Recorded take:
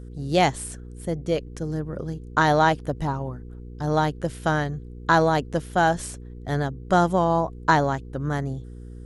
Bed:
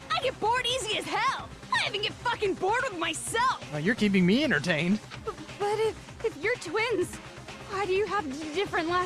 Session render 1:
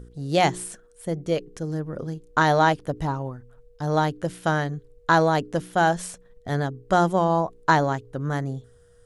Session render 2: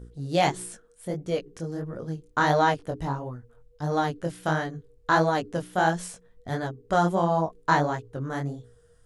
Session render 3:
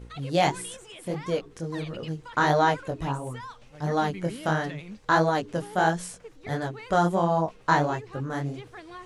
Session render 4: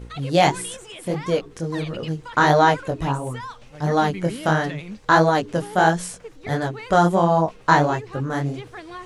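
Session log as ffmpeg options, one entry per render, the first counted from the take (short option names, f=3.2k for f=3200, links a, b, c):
-af "bandreject=f=60:t=h:w=4,bandreject=f=120:t=h:w=4,bandreject=f=180:t=h:w=4,bandreject=f=240:t=h:w=4,bandreject=f=300:t=h:w=4,bandreject=f=360:t=h:w=4,bandreject=f=420:t=h:w=4"
-af "flanger=delay=16.5:depth=7.6:speed=1.5"
-filter_complex "[1:a]volume=-16dB[a];[0:a][a]amix=inputs=2:normalize=0"
-af "volume=6dB"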